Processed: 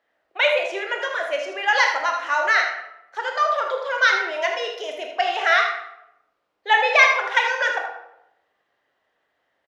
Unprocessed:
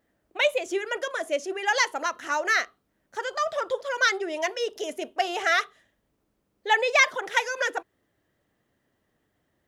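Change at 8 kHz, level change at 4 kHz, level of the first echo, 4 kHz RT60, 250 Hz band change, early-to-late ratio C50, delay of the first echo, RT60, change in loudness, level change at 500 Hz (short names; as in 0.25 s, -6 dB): -3.5 dB, +4.5 dB, -8.0 dB, 0.55 s, -6.0 dB, 4.0 dB, 79 ms, 0.85 s, +5.5 dB, +3.0 dB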